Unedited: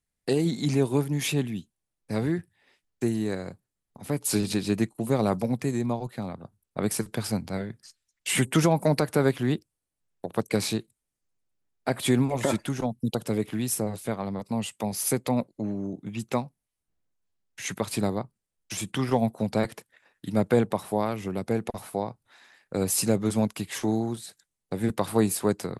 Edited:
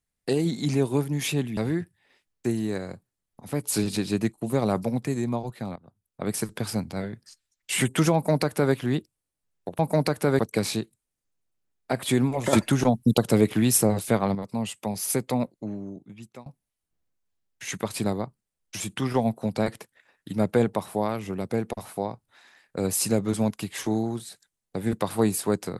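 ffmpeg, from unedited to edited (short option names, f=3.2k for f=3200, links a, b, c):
-filter_complex "[0:a]asplit=8[a][b][c][d][e][f][g][h];[a]atrim=end=1.572[i];[b]atrim=start=2.138:end=6.33,asetpts=PTS-STARTPTS,afade=t=out:st=4.188:d=0.004:c=hsin:silence=0.188365[j];[c]atrim=start=6.33:end=10.362,asetpts=PTS-STARTPTS,afade=t=in:d=0.67:silence=0.188365[k];[d]atrim=start=8.708:end=9.312[l];[e]atrim=start=10.358:end=12.502[m];[f]atrim=start=12.498:end=14.322,asetpts=PTS-STARTPTS,volume=7.5dB[n];[g]atrim=start=14.318:end=16.43,asetpts=PTS-STARTPTS,afade=t=out:st=1.032:d=1.08:silence=0.0749894[o];[h]atrim=start=16.43,asetpts=PTS-STARTPTS,afade=t=in:d=0.004:c=hsin:silence=0.0749894[p];[j][k]concat=n=2:v=0:a=1[q];[i][q]acrossfade=d=0.004:c1=hsin:c2=hsin[r];[r][l]acrossfade=d=0.004:c1=hsin:c2=hsin[s];[s][m]acrossfade=d=0.004:c1=hsin:c2=hsin[t];[t][n]acrossfade=d=0.004:c1=hsin:c2=hsin[u];[o][p]concat=n=2:v=0:a=1[v];[u][v]acrossfade=d=0.004:c1=hsin:c2=hsin"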